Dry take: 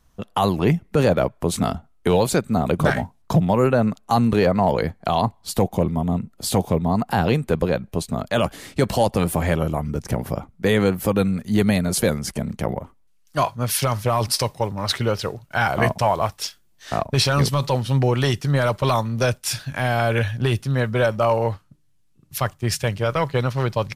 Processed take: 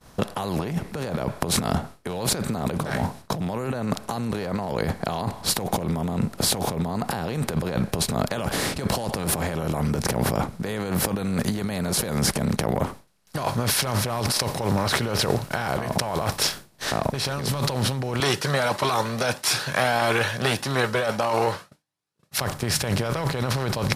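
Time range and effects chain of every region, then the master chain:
18.20–22.39 s: frequency weighting A + Shepard-style flanger rising 1.6 Hz
whole clip: spectral levelling over time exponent 0.6; expander -33 dBFS; compressor with a negative ratio -22 dBFS, ratio -1; trim -3 dB

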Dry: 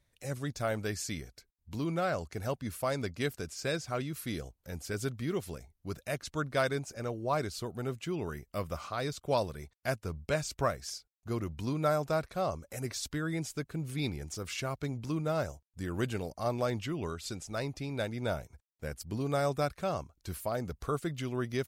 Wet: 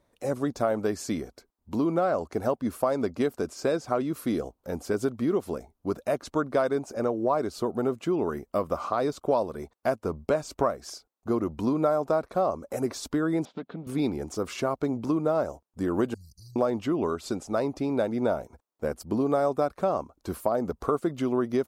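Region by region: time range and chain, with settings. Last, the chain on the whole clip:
13.45–13.87 s: self-modulated delay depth 0.15 ms + compression 2.5:1, threshold -44 dBFS + cabinet simulation 180–4100 Hz, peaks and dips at 180 Hz +9 dB, 360 Hz -7 dB, 1.1 kHz -5 dB, 3.5 kHz +9 dB
16.14–16.56 s: brick-wall FIR band-stop 180–3900 Hz + comb 3 ms, depth 75% + compression 2.5:1, threshold -49 dBFS
whole clip: high-order bell 510 Hz +13.5 dB 3 oct; compression 3:1, threshold -23 dBFS

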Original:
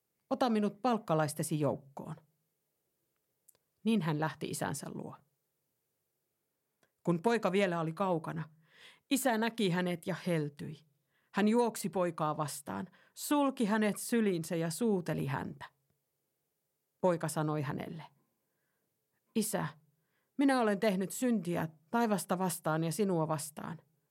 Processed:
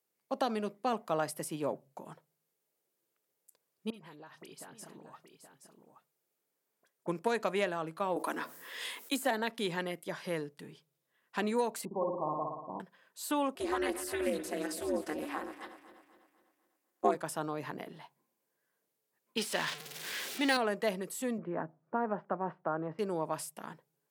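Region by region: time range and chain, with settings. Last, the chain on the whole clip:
3.90–7.08 s: compression 16:1, threshold -43 dBFS + phase dispersion highs, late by 43 ms, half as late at 2.2 kHz + delay 824 ms -8.5 dB
8.16–9.31 s: steep high-pass 220 Hz 48 dB/octave + treble shelf 5.7 kHz +9 dB + level flattener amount 50%
11.85–12.80 s: Chebyshev low-pass 1.1 kHz, order 8 + flutter echo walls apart 10 m, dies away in 1 s
13.55–17.15 s: backward echo that repeats 125 ms, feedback 67%, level -12 dB + comb 5.4 ms, depth 100% + ring modulator 150 Hz
19.37–20.57 s: jump at every zero crossing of -37.5 dBFS + frequency weighting D + tape noise reduction on one side only decoder only
21.38–22.99 s: low-pass 1.6 kHz 24 dB/octave + three bands compressed up and down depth 40%
whole clip: Bessel high-pass 320 Hz, order 2; de-esser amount 65%

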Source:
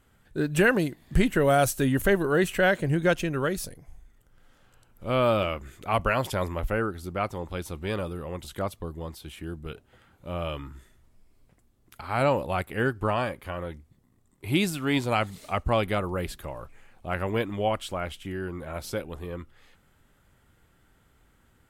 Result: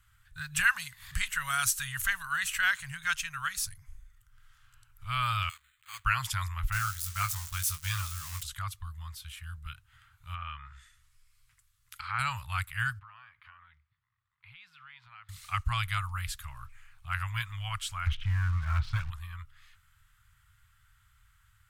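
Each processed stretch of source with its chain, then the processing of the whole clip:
0.65–3.66 s: bass shelf 290 Hz -9 dB + upward compressor, threshold -30 dBFS
5.49–6.05 s: block-companded coder 3-bit + pre-emphasis filter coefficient 0.97 + careless resampling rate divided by 8×, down filtered, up hold
6.72–8.43 s: zero-crossing glitches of -28 dBFS + expander -36 dBFS + doubling 20 ms -6.5 dB
10.34–12.19 s: low-pass that closes with the level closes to 1.6 kHz, closed at -30.5 dBFS + tilt shelf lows -6 dB, about 920 Hz
12.99–15.29 s: high-pass 630 Hz 6 dB/octave + compression 3:1, threshold -46 dBFS + distance through air 340 m
18.06–19.10 s: low-pass 3.7 kHz 24 dB/octave + tilt shelf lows +7 dB, about 1.1 kHz + waveshaping leveller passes 2
whole clip: elliptic band-stop 110–1200 Hz, stop band 70 dB; dynamic bell 6.8 kHz, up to +5 dB, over -50 dBFS, Q 1

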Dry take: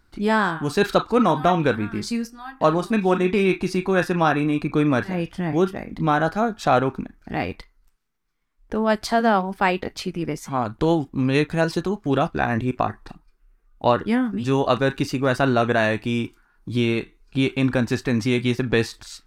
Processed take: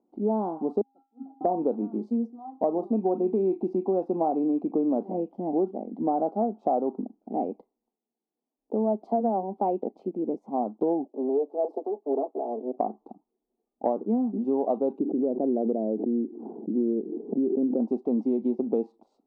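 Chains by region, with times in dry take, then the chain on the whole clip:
0.81–1.41 s: feedback comb 270 Hz, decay 0.61 s, harmonics odd, mix 100% + upward expansion 2.5:1, over -46 dBFS
11.05–12.77 s: comb filter that takes the minimum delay 4.6 ms + steep high-pass 290 Hz 48 dB/octave + peaking EQ 2.2 kHz -11.5 dB 2.2 oct
14.99–17.80 s: Chebyshev band-pass 130–460 Hz + swell ahead of each attack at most 47 dB/s
whole clip: elliptic band-pass 220–790 Hz, stop band 40 dB; compression, threshold -21 dBFS

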